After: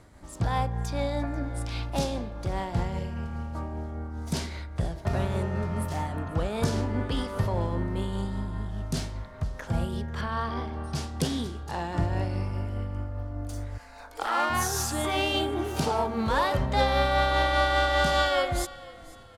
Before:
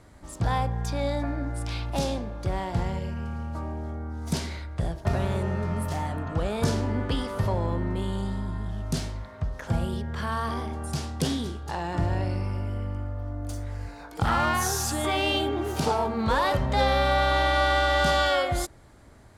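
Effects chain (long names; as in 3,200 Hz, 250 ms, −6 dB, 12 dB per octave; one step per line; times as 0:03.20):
0:13.77–0:14.49: high-pass filter 730 Hz → 260 Hz 24 dB per octave
amplitude tremolo 5 Hz, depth 30%
0:10.21–0:10.95: Savitzky-Golay smoothing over 15 samples
echo with shifted repeats 490 ms, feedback 39%, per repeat −30 Hz, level −20.5 dB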